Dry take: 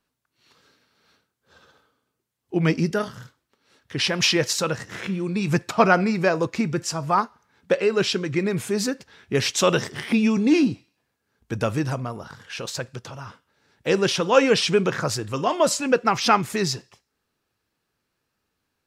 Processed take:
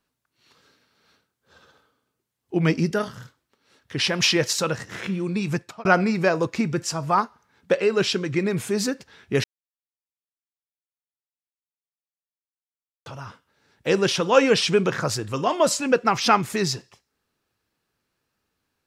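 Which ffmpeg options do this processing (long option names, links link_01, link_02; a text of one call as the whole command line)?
ffmpeg -i in.wav -filter_complex "[0:a]asplit=4[link_01][link_02][link_03][link_04];[link_01]atrim=end=5.85,asetpts=PTS-STARTPTS,afade=type=out:start_time=5.35:duration=0.5[link_05];[link_02]atrim=start=5.85:end=9.44,asetpts=PTS-STARTPTS,afade=type=in:duration=0.004:curve=hsin,afade=type=out:start_time=3.586:duration=0.004:curve=hsin[link_06];[link_03]atrim=start=9.44:end=13.06,asetpts=PTS-STARTPTS,volume=0[link_07];[link_04]atrim=start=13.06,asetpts=PTS-STARTPTS,afade=type=in:duration=0.004:curve=hsin[link_08];[link_05][link_06][link_07][link_08]concat=n=4:v=0:a=1" out.wav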